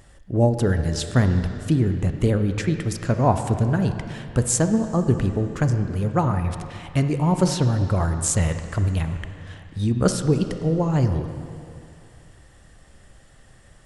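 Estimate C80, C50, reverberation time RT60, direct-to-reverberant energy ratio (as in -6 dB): 8.5 dB, 7.5 dB, 2.5 s, 7.0 dB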